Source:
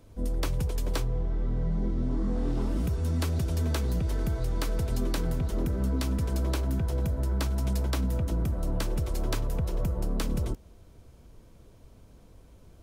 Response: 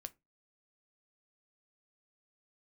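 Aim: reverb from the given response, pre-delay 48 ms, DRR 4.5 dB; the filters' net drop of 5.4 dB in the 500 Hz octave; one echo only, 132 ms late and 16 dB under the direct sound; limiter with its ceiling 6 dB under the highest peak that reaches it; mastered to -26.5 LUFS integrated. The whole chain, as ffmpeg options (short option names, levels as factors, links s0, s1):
-filter_complex "[0:a]equalizer=f=500:t=o:g=-7,alimiter=limit=0.0668:level=0:latency=1,aecho=1:1:132:0.158,asplit=2[s0][s1];[1:a]atrim=start_sample=2205,adelay=48[s2];[s1][s2]afir=irnorm=-1:irlink=0,volume=1.06[s3];[s0][s3]amix=inputs=2:normalize=0,volume=1.58"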